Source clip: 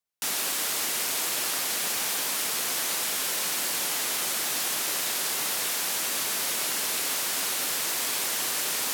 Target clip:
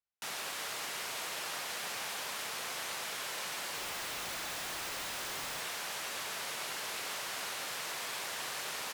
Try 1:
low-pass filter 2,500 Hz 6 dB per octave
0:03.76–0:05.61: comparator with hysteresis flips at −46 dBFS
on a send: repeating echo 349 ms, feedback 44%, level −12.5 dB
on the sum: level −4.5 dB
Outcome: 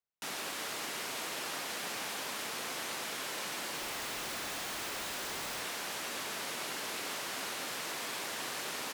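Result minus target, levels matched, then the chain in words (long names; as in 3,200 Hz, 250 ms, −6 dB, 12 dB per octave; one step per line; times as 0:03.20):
250 Hz band +6.0 dB
low-pass filter 2,500 Hz 6 dB per octave
parametric band 270 Hz −9 dB 1.2 octaves
0:03.76–0:05.61: comparator with hysteresis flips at −46 dBFS
on a send: repeating echo 349 ms, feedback 44%, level −12.5 dB
on the sum: level −4.5 dB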